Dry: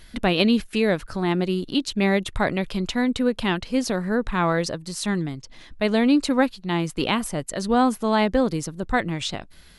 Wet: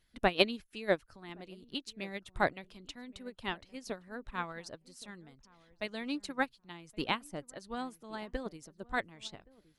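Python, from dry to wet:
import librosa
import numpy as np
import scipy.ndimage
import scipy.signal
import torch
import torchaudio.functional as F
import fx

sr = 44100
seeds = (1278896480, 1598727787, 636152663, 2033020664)

y = fx.hpss(x, sr, part='harmonic', gain_db=-9)
y = fx.echo_filtered(y, sr, ms=1121, feedback_pct=20, hz=840.0, wet_db=-14)
y = fx.upward_expand(y, sr, threshold_db=-31.0, expansion=2.5)
y = y * librosa.db_to_amplitude(-1.5)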